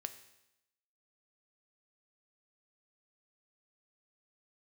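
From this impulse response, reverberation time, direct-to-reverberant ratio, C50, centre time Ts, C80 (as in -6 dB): 0.90 s, 8.5 dB, 12.0 dB, 9 ms, 14.0 dB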